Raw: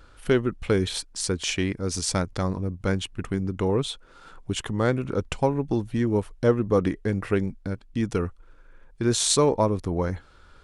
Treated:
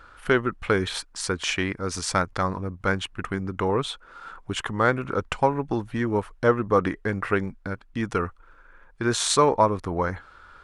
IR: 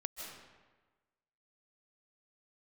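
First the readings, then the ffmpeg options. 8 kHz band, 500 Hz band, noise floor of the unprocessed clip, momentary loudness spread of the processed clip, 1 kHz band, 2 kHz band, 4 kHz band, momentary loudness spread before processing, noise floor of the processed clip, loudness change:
−2.5 dB, 0.0 dB, −53 dBFS, 10 LU, +7.0 dB, +7.0 dB, 0.0 dB, 9 LU, −53 dBFS, +0.5 dB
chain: -af "equalizer=frequency=1300:width=0.69:gain=12.5,volume=-3.5dB"

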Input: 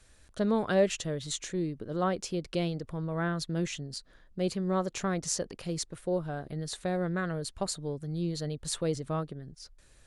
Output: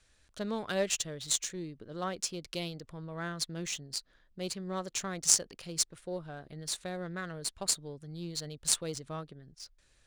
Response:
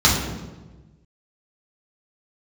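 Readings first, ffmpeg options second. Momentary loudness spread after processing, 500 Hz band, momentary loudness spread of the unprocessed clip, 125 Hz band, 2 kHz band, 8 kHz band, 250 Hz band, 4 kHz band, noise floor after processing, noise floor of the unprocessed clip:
13 LU, −7.5 dB, 9 LU, −9.0 dB, −2.5 dB, +7.5 dB, −8.5 dB, +4.0 dB, −67 dBFS, −59 dBFS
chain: -af "crystalizer=i=6:c=0,adynamicsmooth=sensitivity=5:basefreq=3700,aeval=exprs='1*(cos(1*acos(clip(val(0)/1,-1,1)))-cos(1*PI/2))+0.0794*(cos(7*acos(clip(val(0)/1,-1,1)))-cos(7*PI/2))':channel_layout=same,volume=-2dB"

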